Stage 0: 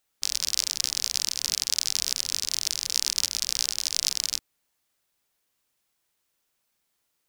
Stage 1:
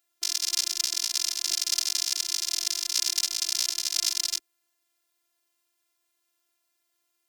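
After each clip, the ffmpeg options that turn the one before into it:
ffmpeg -i in.wav -af "highpass=190,afftfilt=real='hypot(re,im)*cos(PI*b)':imag='0':win_size=512:overlap=0.75,volume=3dB" out.wav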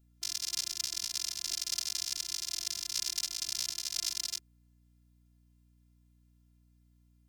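ffmpeg -i in.wav -af "aeval=exprs='val(0)+0.00158*(sin(2*PI*60*n/s)+sin(2*PI*2*60*n/s)/2+sin(2*PI*3*60*n/s)/3+sin(2*PI*4*60*n/s)/4+sin(2*PI*5*60*n/s)/5)':channel_layout=same,volume=-8dB" out.wav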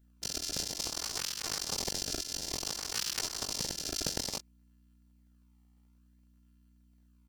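ffmpeg -i in.wav -filter_complex "[0:a]asplit=2[link_01][link_02];[link_02]adelay=21,volume=-4.5dB[link_03];[link_01][link_03]amix=inputs=2:normalize=0,asplit=2[link_04][link_05];[link_05]acrusher=samples=24:mix=1:aa=0.000001:lfo=1:lforange=38.4:lforate=0.57,volume=-6dB[link_06];[link_04][link_06]amix=inputs=2:normalize=0,volume=-2.5dB" out.wav

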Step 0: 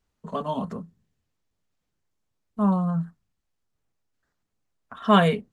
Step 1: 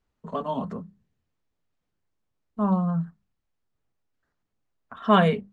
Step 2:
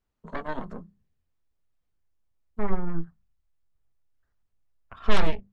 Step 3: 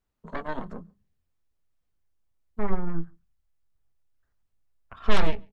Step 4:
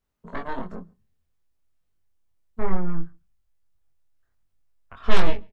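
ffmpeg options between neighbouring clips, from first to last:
ffmpeg -i in.wav -af "aemphasis=mode=reproduction:type=50kf,bandreject=frequency=50:width_type=h:width=6,bandreject=frequency=100:width_type=h:width=6,bandreject=frequency=150:width_type=h:width=6,bandreject=frequency=200:width_type=h:width=6" out.wav
ffmpeg -i in.wav -af "aeval=exprs='0.562*(cos(1*acos(clip(val(0)/0.562,-1,1)))-cos(1*PI/2))+0.251*(cos(6*acos(clip(val(0)/0.562,-1,1)))-cos(6*PI/2))':channel_layout=same,acompressor=threshold=-26dB:ratio=1.5,asubboost=boost=5.5:cutoff=92,volume=-4.5dB" out.wav
ffmpeg -i in.wav -filter_complex "[0:a]asplit=2[link_01][link_02];[link_02]adelay=139.9,volume=-29dB,highshelf=frequency=4000:gain=-3.15[link_03];[link_01][link_03]amix=inputs=2:normalize=0" out.wav
ffmpeg -i in.wav -filter_complex "[0:a]asplit=2[link_01][link_02];[link_02]adelay=22,volume=-3dB[link_03];[link_01][link_03]amix=inputs=2:normalize=0" out.wav

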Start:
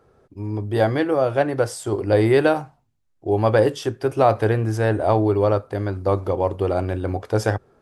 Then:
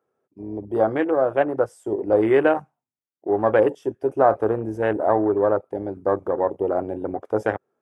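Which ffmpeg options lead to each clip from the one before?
ffmpeg -i in.wav -af "highpass=230,afwtdn=0.0447,equalizer=frequency=4300:width_type=o:width=0.48:gain=-10.5" out.wav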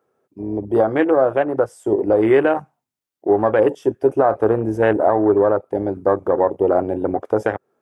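ffmpeg -i in.wav -af "alimiter=limit=-12dB:level=0:latency=1:release=238,volume=7dB" out.wav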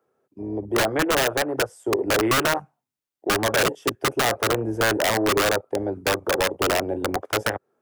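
ffmpeg -i in.wav -filter_complex "[0:a]acrossover=split=150|280|940[link_01][link_02][link_03][link_04];[link_02]acompressor=threshold=-37dB:ratio=6[link_05];[link_03]aeval=exprs='(mod(4.22*val(0)+1,2)-1)/4.22':channel_layout=same[link_06];[link_01][link_05][link_06][link_04]amix=inputs=4:normalize=0,volume=-3dB" out.wav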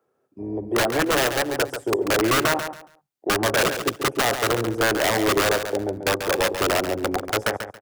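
ffmpeg -i in.wav -af "aecho=1:1:139|278|417:0.376|0.0827|0.0182" out.wav

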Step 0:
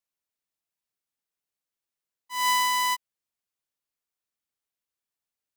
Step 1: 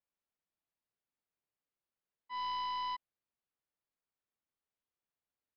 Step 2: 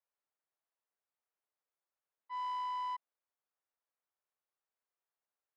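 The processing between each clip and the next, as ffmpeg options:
ffmpeg -i in.wav -af "lowpass=frequency=1400:poles=1,aresample=11025,asoftclip=type=tanh:threshold=-36dB,aresample=44100" out.wav
ffmpeg -i in.wav -filter_complex "[0:a]asoftclip=type=tanh:threshold=-35.5dB,acrossover=split=410 2000:gain=0.0891 1 0.224[link_01][link_02][link_03];[link_01][link_02][link_03]amix=inputs=3:normalize=0,volume=2.5dB" out.wav

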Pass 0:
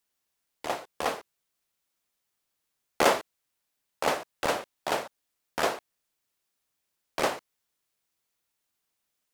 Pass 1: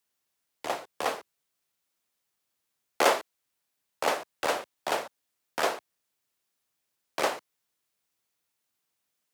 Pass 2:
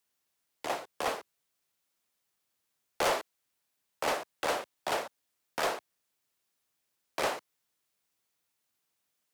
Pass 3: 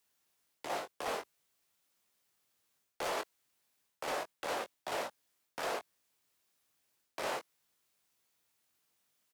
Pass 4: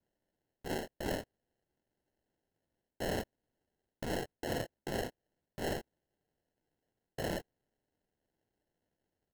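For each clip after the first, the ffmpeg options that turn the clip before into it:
ffmpeg -i in.wav -filter_complex "[0:a]highpass=67,acrossover=split=290|1300[link_01][link_02][link_03];[link_01]acompressor=threshold=-49dB:ratio=6[link_04];[link_04][link_02][link_03]amix=inputs=3:normalize=0" out.wav
ffmpeg -i in.wav -af "asoftclip=type=tanh:threshold=-23dB" out.wav
ffmpeg -i in.wav -filter_complex "[0:a]areverse,acompressor=threshold=-37dB:ratio=10,areverse,asplit=2[link_01][link_02];[link_02]adelay=21,volume=-7dB[link_03];[link_01][link_03]amix=inputs=2:normalize=0,volume=2dB" out.wav
ffmpeg -i in.wav -af "highpass=frequency=180:width_type=q:width=0.5412,highpass=frequency=180:width_type=q:width=1.307,lowpass=frequency=2700:width_type=q:width=0.5176,lowpass=frequency=2700:width_type=q:width=0.7071,lowpass=frequency=2700:width_type=q:width=1.932,afreqshift=110,acrusher=samples=37:mix=1:aa=0.000001,volume=1dB" out.wav

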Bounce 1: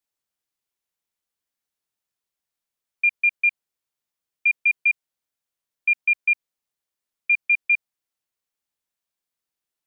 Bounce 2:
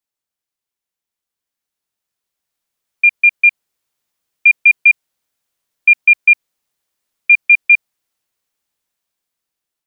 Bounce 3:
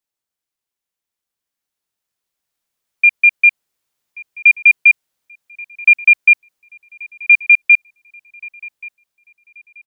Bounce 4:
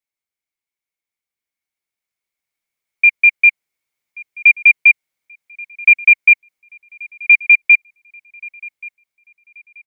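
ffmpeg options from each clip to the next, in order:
ffmpeg -i in.wav -af "dynaudnorm=framelen=980:gausssize=5:maxgain=13dB" out.wav
ffmpeg -i in.wav -filter_complex "[0:a]asplit=2[link_01][link_02];[link_02]adelay=1131,lowpass=frequency=2300:poles=1,volume=-20dB,asplit=2[link_03][link_04];[link_04]adelay=1131,lowpass=frequency=2300:poles=1,volume=0.49,asplit=2[link_05][link_06];[link_06]adelay=1131,lowpass=frequency=2300:poles=1,volume=0.49,asplit=2[link_07][link_08];[link_08]adelay=1131,lowpass=frequency=2300:poles=1,volume=0.49[link_09];[link_01][link_03][link_05][link_07][link_09]amix=inputs=5:normalize=0" out.wav
ffmpeg -i in.wav -af "equalizer=frequency=2200:width_type=o:width=0.21:gain=14.5,volume=-6dB" out.wav

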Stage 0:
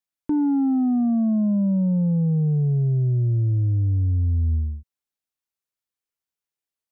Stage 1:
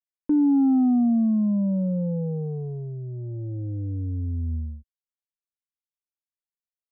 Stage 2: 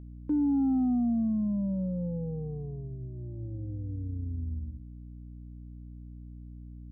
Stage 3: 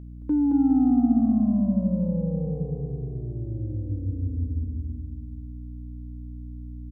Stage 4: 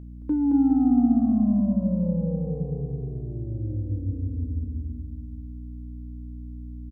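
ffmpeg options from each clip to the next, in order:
ffmpeg -i in.wav -af "anlmdn=1,equalizer=frequency=450:width_type=o:width=1.6:gain=7.5,aecho=1:1:3.9:0.59,volume=-6.5dB" out.wav
ffmpeg -i in.wav -af "aeval=exprs='val(0)+0.0158*(sin(2*PI*60*n/s)+sin(2*PI*2*60*n/s)/2+sin(2*PI*3*60*n/s)/3+sin(2*PI*4*60*n/s)/4+sin(2*PI*5*60*n/s)/5)':channel_layout=same,volume=-7dB" out.wav
ffmpeg -i in.wav -af "aecho=1:1:220|407|566|701.1|815.9:0.631|0.398|0.251|0.158|0.1,volume=4.5dB" out.wav
ffmpeg -i in.wav -filter_complex "[0:a]asplit=2[link_01][link_02];[link_02]adelay=29,volume=-12dB[link_03];[link_01][link_03]amix=inputs=2:normalize=0" out.wav

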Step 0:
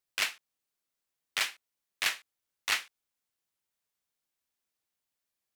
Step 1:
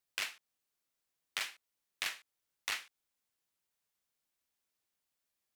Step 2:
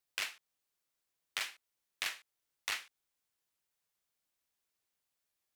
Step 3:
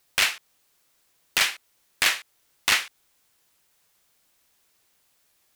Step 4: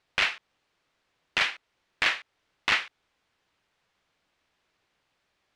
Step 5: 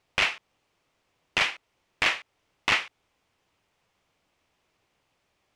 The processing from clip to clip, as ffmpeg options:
ffmpeg -i in.wav -af "acompressor=threshold=-36dB:ratio=3" out.wav
ffmpeg -i in.wav -af "equalizer=frequency=230:width=4.9:gain=-4.5" out.wav
ffmpeg -i in.wav -af "aeval=exprs='0.119*sin(PI/2*2.82*val(0)/0.119)':channel_layout=same,volume=6dB" out.wav
ffmpeg -i in.wav -af "lowpass=3200,volume=-1dB" out.wav
ffmpeg -i in.wav -af "equalizer=frequency=100:width_type=o:width=0.67:gain=3,equalizer=frequency=1600:width_type=o:width=0.67:gain=-6,equalizer=frequency=4000:width_type=o:width=0.67:gain=-5,volume=4dB" out.wav

